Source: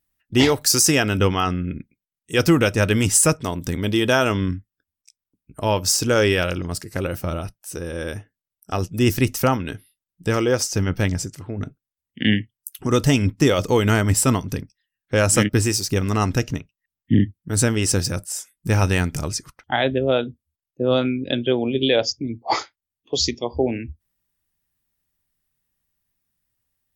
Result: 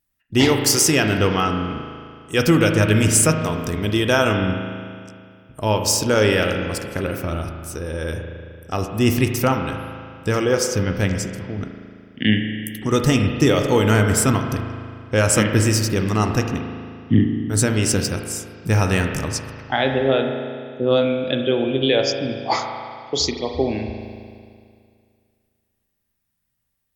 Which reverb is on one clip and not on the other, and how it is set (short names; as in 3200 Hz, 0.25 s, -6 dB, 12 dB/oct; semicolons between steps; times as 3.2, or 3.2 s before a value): spring tank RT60 2.2 s, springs 37 ms, chirp 45 ms, DRR 4 dB